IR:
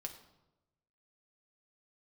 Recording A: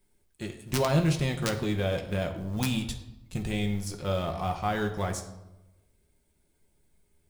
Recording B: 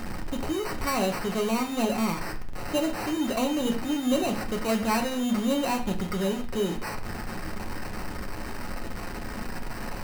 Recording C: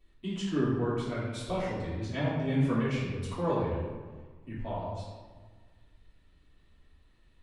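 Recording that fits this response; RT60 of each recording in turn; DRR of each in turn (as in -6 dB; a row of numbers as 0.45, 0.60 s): A; 1.0, 0.45, 1.5 s; 3.5, 2.0, -10.0 dB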